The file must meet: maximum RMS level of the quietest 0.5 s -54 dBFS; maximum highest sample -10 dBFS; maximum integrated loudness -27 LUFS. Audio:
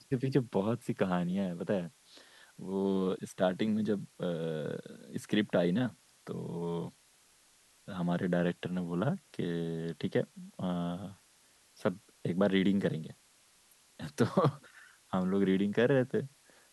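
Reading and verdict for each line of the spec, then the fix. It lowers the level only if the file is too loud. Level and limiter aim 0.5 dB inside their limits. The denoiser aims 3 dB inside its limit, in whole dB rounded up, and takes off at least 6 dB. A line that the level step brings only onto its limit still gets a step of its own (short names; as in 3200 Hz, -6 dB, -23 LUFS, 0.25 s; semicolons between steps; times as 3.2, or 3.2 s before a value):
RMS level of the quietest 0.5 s -65 dBFS: OK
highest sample -13.0 dBFS: OK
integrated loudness -33.0 LUFS: OK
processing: none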